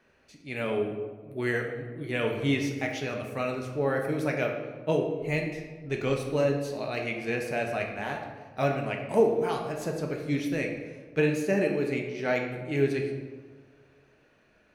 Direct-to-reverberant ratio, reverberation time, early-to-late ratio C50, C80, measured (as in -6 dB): 1.0 dB, 1.6 s, 5.0 dB, 7.0 dB